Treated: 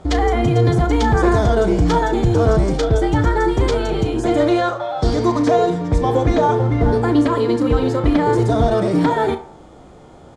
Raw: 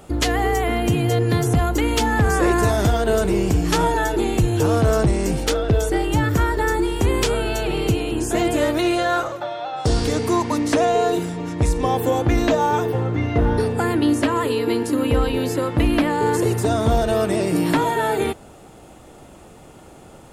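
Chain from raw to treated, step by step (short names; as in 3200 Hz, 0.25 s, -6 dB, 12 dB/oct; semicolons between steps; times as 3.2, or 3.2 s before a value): in parallel at -5 dB: short-mantissa float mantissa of 2-bit; on the sum: bell 1900 Hz -3.5 dB 0.77 oct; on a send: narrowing echo 0.131 s, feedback 53%, band-pass 950 Hz, level -11 dB; on the sum: time stretch by phase-locked vocoder 0.51×; air absorption 100 m; notch 2700 Hz, Q 5.8; doubler 34 ms -11.5 dB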